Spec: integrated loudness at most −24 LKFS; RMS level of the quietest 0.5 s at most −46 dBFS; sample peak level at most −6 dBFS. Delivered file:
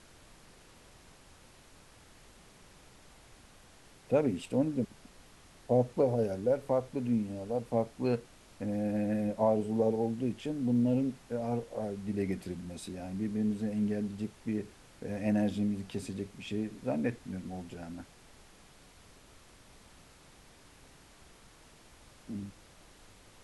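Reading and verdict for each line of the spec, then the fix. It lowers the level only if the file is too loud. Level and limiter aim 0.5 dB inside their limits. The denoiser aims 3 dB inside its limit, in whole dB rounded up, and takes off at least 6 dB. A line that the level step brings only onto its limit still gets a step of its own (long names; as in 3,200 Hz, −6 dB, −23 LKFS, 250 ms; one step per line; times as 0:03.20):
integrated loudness −33.0 LKFS: in spec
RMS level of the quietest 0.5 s −57 dBFS: in spec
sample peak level −15.0 dBFS: in spec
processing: no processing needed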